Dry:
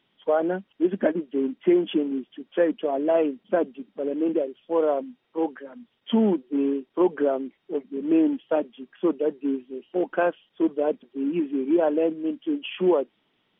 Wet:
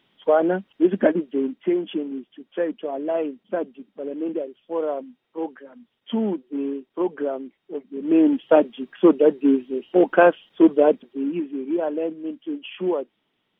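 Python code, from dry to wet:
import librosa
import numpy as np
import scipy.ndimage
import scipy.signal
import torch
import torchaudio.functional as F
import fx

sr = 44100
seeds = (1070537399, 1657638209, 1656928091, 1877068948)

y = fx.gain(x, sr, db=fx.line((1.17, 4.5), (1.77, -3.0), (7.85, -3.0), (8.46, 8.5), (10.82, 8.5), (11.49, -3.0)))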